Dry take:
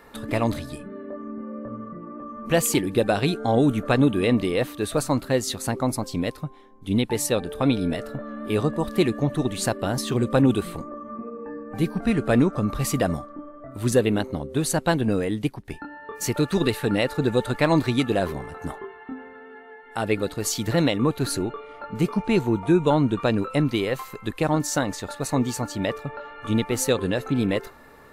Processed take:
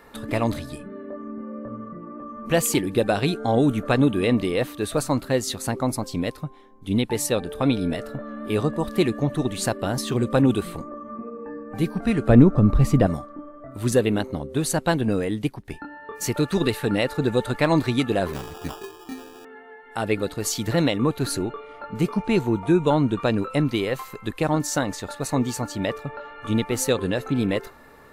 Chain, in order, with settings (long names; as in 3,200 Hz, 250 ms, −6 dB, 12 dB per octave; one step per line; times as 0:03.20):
0:12.29–0:13.07: spectral tilt −3 dB per octave
0:18.33–0:19.45: sample-rate reduction 2,100 Hz, jitter 0%